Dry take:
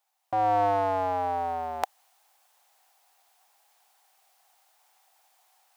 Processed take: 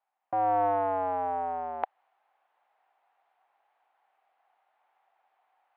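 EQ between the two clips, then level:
band-pass filter 110–2,600 Hz
high-frequency loss of the air 440 metres
low-shelf EQ 190 Hz −4.5 dB
0.0 dB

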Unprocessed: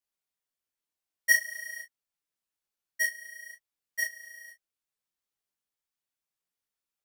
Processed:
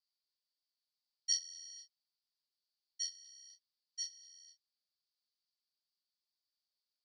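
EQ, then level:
high-pass filter 1,100 Hz 24 dB per octave
Butterworth band-reject 1,700 Hz, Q 0.74
transistor ladder low-pass 4,900 Hz, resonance 80%
+7.0 dB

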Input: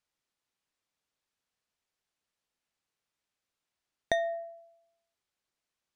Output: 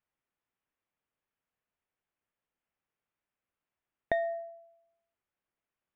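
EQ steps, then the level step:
Savitzky-Golay smoothing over 25 samples
high-frequency loss of the air 200 metres
0.0 dB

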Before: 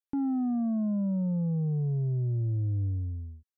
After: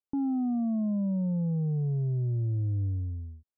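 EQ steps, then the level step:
low-pass filter 1,100 Hz 24 dB per octave
0.0 dB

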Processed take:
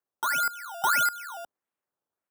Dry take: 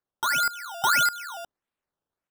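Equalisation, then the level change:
high-pass filter 67 Hz
low-shelf EQ 200 Hz −10 dB
parametric band 3,900 Hz −7.5 dB 1.7 octaves
0.0 dB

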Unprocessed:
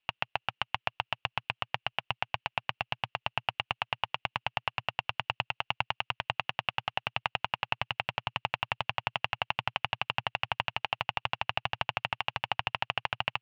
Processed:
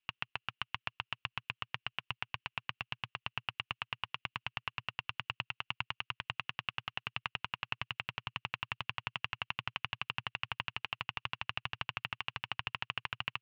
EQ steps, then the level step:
flat-topped bell 670 Hz −10.5 dB 1 octave
−5.5 dB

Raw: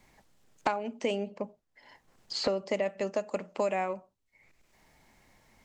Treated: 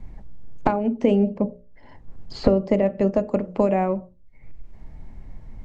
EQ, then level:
spectral tilt −4.5 dB per octave
low-shelf EQ 250 Hz +5 dB
mains-hum notches 60/120/180/240/300/360/420/480/540/600 Hz
+5.0 dB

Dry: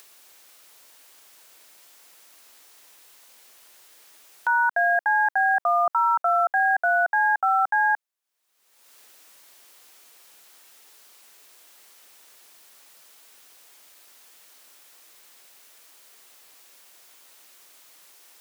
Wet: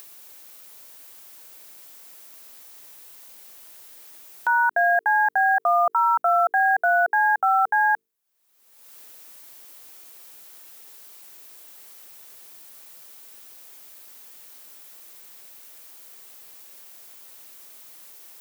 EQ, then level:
low-shelf EQ 370 Hz +10.5 dB
high-shelf EQ 11,000 Hz +10.5 dB
mains-hum notches 50/100/150/200/250/300/350/400/450 Hz
0.0 dB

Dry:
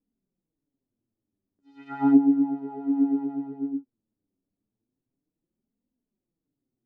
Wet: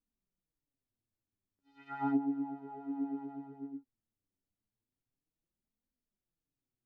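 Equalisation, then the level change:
parametric band 280 Hz −14 dB 2.3 octaves
high-shelf EQ 2,100 Hz −7.5 dB
0.0 dB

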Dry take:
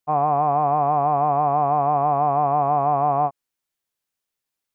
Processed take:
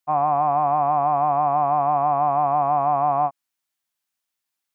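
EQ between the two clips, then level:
low-shelf EQ 160 Hz −11 dB
parametric band 450 Hz −13.5 dB 0.39 octaves
+1.5 dB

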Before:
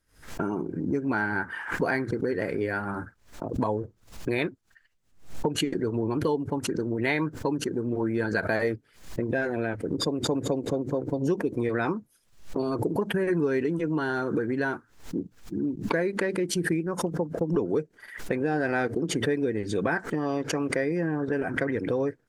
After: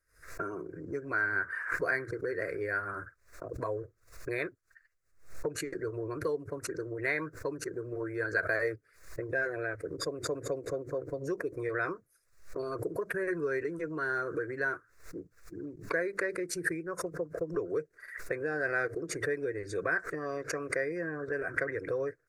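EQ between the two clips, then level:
tilt shelving filter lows −6.5 dB, about 1,100 Hz
high-shelf EQ 3,000 Hz −10.5 dB
phaser with its sweep stopped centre 850 Hz, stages 6
0.0 dB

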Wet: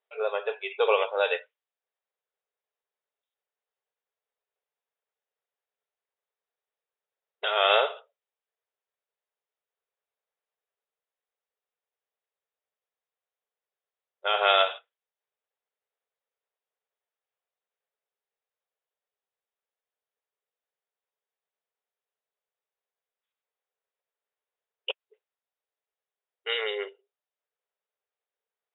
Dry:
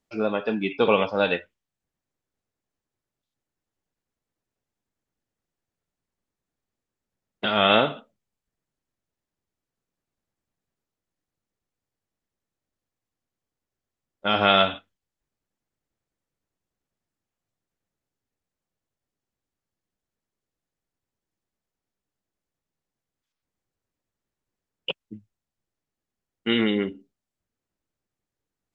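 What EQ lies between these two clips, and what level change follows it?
linear-phase brick-wall band-pass 390–3,900 Hz
−2.5 dB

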